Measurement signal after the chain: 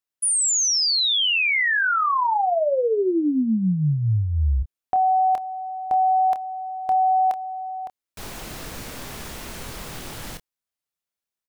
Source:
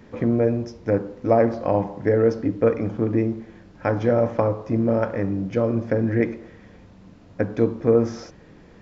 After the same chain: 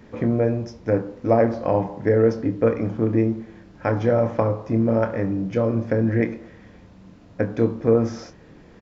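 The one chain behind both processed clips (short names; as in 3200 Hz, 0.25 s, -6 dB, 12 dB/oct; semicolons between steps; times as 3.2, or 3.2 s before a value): doubler 27 ms -10 dB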